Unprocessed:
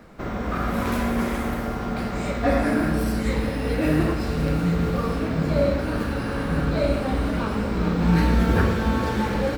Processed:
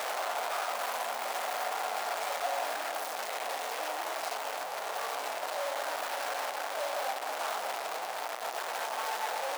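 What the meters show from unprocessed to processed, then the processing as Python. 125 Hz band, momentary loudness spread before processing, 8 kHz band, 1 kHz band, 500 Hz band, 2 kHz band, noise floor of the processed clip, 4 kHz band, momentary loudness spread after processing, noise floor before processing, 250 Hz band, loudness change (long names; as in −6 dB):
below −40 dB, 7 LU, +3.0 dB, −2.5 dB, −10.5 dB, −6.0 dB, −38 dBFS, −1.0 dB, 3 LU, −28 dBFS, −34.5 dB, −10.5 dB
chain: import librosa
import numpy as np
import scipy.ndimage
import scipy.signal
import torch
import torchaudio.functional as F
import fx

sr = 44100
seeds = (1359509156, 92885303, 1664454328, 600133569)

y = np.sign(x) * np.sqrt(np.mean(np.square(x)))
y = fx.ladder_highpass(y, sr, hz=620.0, resonance_pct=55)
y = y * 10.0 ** (-1.5 / 20.0)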